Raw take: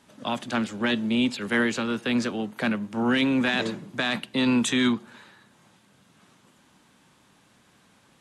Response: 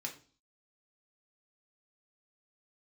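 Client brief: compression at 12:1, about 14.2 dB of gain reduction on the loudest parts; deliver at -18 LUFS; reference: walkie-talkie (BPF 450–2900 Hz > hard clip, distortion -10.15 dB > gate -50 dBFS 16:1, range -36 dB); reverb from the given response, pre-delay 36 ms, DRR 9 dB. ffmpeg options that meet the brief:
-filter_complex "[0:a]acompressor=threshold=-33dB:ratio=12,asplit=2[a][b];[1:a]atrim=start_sample=2205,adelay=36[c];[b][c]afir=irnorm=-1:irlink=0,volume=-8.5dB[d];[a][d]amix=inputs=2:normalize=0,highpass=450,lowpass=2.9k,asoftclip=type=hard:threshold=-37dB,agate=range=-36dB:threshold=-50dB:ratio=16,volume=25.5dB"

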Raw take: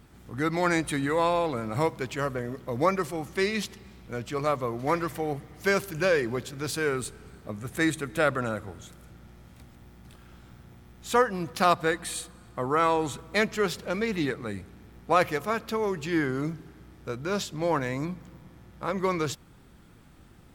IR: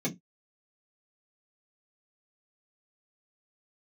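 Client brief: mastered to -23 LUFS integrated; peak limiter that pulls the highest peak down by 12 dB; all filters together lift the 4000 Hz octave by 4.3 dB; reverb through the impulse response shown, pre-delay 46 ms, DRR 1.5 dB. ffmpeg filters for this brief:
-filter_complex "[0:a]equalizer=f=4k:t=o:g=5,alimiter=limit=-19dB:level=0:latency=1,asplit=2[a][b];[1:a]atrim=start_sample=2205,adelay=46[c];[b][c]afir=irnorm=-1:irlink=0,volume=-7dB[d];[a][d]amix=inputs=2:normalize=0,volume=1.5dB"

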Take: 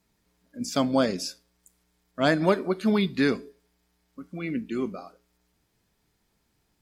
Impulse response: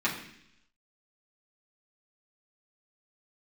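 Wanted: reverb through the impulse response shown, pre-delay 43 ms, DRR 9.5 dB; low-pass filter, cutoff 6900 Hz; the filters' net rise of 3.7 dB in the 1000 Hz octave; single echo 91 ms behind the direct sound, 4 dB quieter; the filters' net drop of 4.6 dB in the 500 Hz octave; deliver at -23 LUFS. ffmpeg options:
-filter_complex "[0:a]lowpass=6.9k,equalizer=f=500:t=o:g=-8.5,equalizer=f=1k:t=o:g=7.5,aecho=1:1:91:0.631,asplit=2[a][b];[1:a]atrim=start_sample=2205,adelay=43[c];[b][c]afir=irnorm=-1:irlink=0,volume=-20dB[d];[a][d]amix=inputs=2:normalize=0,volume=2.5dB"

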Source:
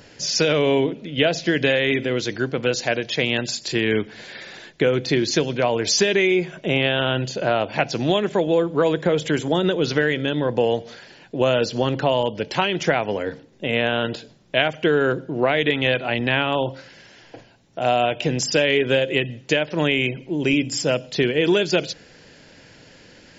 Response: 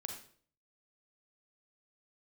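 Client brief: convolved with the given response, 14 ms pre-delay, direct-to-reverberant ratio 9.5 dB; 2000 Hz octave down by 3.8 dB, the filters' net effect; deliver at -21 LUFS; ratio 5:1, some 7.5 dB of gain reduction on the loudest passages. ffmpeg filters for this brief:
-filter_complex "[0:a]equalizer=f=2k:t=o:g=-5,acompressor=threshold=-23dB:ratio=5,asplit=2[a][b];[1:a]atrim=start_sample=2205,adelay=14[c];[b][c]afir=irnorm=-1:irlink=0,volume=-7.5dB[d];[a][d]amix=inputs=2:normalize=0,volume=6dB"

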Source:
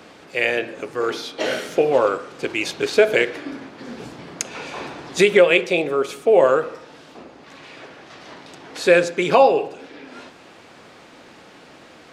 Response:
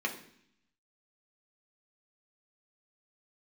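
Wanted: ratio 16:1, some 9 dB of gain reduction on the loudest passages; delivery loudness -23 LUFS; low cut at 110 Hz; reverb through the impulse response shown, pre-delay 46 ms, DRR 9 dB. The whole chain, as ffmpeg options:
-filter_complex "[0:a]highpass=110,acompressor=threshold=-17dB:ratio=16,asplit=2[a][b];[1:a]atrim=start_sample=2205,adelay=46[c];[b][c]afir=irnorm=-1:irlink=0,volume=-15.5dB[d];[a][d]amix=inputs=2:normalize=0,volume=1.5dB"

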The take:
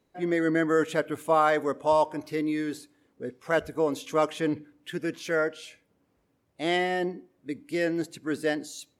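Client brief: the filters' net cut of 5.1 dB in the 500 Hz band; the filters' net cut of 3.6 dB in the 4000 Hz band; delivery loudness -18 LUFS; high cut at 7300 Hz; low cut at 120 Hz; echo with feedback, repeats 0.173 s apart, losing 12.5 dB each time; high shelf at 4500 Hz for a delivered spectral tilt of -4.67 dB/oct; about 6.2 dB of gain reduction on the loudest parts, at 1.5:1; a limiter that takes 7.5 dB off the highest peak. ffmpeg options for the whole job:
-af "highpass=120,lowpass=7.3k,equalizer=f=500:t=o:g=-6.5,equalizer=f=4k:t=o:g=-8,highshelf=f=4.5k:g=6.5,acompressor=threshold=-38dB:ratio=1.5,alimiter=level_in=2dB:limit=-24dB:level=0:latency=1,volume=-2dB,aecho=1:1:173|346|519:0.237|0.0569|0.0137,volume=19.5dB"

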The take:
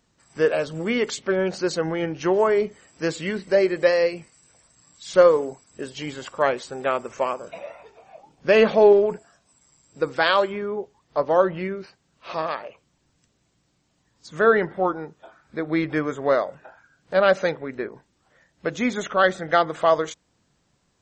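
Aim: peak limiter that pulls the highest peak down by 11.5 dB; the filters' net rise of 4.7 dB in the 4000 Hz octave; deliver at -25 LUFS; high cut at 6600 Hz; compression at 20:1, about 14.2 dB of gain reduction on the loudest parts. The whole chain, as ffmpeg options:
-af "lowpass=6.6k,equalizer=f=4k:t=o:g=6.5,acompressor=threshold=-23dB:ratio=20,volume=9dB,alimiter=limit=-14.5dB:level=0:latency=1"

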